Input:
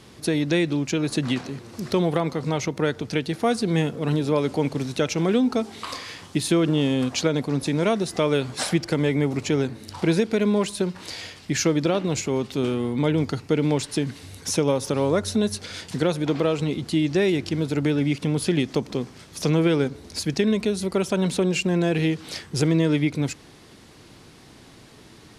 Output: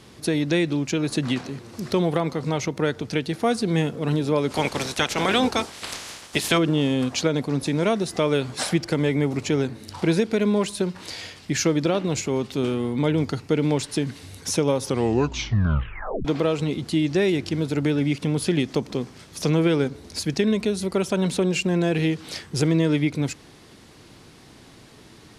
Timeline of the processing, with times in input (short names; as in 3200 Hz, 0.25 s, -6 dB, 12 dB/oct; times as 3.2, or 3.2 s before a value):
4.5–6.57 spectral limiter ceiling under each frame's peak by 20 dB
14.83 tape stop 1.42 s